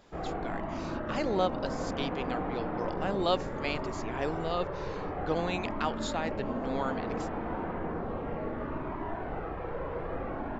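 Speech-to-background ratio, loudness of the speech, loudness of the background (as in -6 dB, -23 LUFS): 1.0 dB, -35.0 LUFS, -36.0 LUFS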